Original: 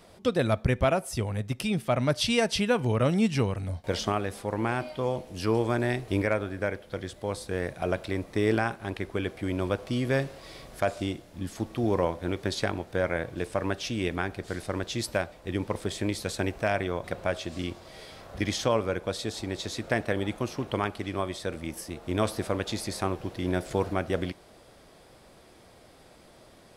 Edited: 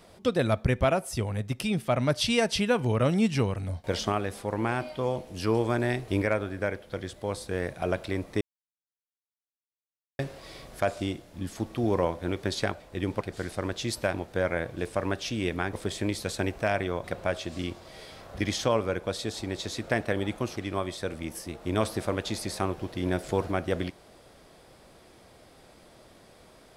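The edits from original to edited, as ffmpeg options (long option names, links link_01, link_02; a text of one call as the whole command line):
ffmpeg -i in.wav -filter_complex "[0:a]asplit=8[link_01][link_02][link_03][link_04][link_05][link_06][link_07][link_08];[link_01]atrim=end=8.41,asetpts=PTS-STARTPTS,afade=type=out:start_time=8.406:duration=0.004:curve=hsin[link_09];[link_02]atrim=start=8.41:end=10.19,asetpts=PTS-STARTPTS,volume=0[link_10];[link_03]atrim=start=10.19:end=12.732,asetpts=PTS-STARTPTS,afade=type=in:duration=0.004:curve=hsin[link_11];[link_04]atrim=start=15.248:end=15.732[link_12];[link_05]atrim=start=14.318:end=15.252[link_13];[link_06]atrim=start=12.728:end=14.322[link_14];[link_07]atrim=start=15.728:end=20.562[link_15];[link_08]atrim=start=20.978[link_16];[link_09][link_10][link_11]concat=n=3:v=0:a=1[link_17];[link_17][link_12]acrossfade=duration=0.004:curve1=hsin:curve2=hsin[link_18];[link_18][link_13]acrossfade=duration=0.004:curve1=hsin:curve2=hsin[link_19];[link_19][link_14]acrossfade=duration=0.004:curve1=hsin:curve2=hsin[link_20];[link_20][link_15]acrossfade=duration=0.004:curve1=hsin:curve2=hsin[link_21];[link_21][link_16]acrossfade=duration=0.004:curve1=hsin:curve2=hsin" out.wav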